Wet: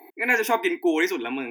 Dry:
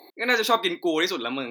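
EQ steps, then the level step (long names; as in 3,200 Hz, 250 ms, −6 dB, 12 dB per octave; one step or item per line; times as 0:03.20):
phaser with its sweep stopped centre 830 Hz, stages 8
+3.5 dB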